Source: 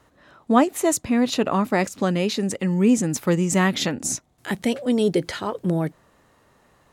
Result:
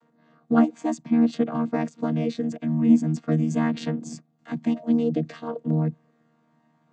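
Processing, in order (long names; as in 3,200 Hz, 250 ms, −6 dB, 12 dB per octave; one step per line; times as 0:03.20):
channel vocoder with a chord as carrier bare fifth, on D#3
level −1 dB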